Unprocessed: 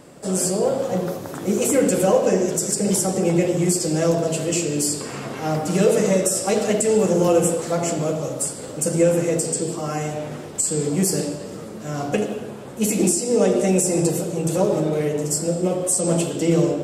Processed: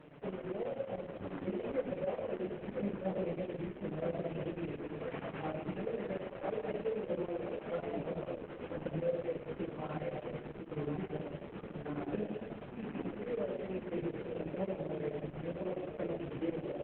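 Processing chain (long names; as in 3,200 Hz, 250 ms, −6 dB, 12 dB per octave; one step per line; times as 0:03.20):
variable-slope delta modulation 16 kbit/s
dynamic equaliser 570 Hz, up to +3 dB, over −31 dBFS, Q 6
downward compressor 3 to 1, threshold −29 dBFS, peak gain reduction 12.5 dB
flanger 0.15 Hz, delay 6.5 ms, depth 9.7 ms, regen +34%
square-wave tremolo 9.2 Hz, depth 65%, duty 80%
single-tap delay 992 ms −6 dB
level −3.5 dB
Opus 8 kbit/s 48,000 Hz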